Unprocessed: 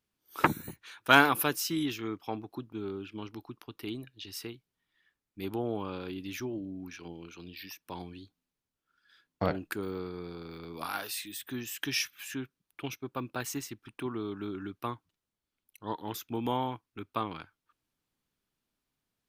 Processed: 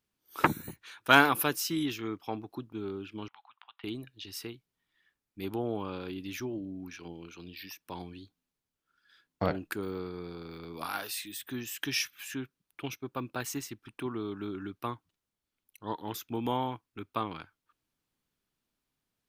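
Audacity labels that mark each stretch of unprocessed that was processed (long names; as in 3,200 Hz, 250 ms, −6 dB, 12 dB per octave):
3.280000	3.840000	elliptic band-pass filter 780–3,500 Hz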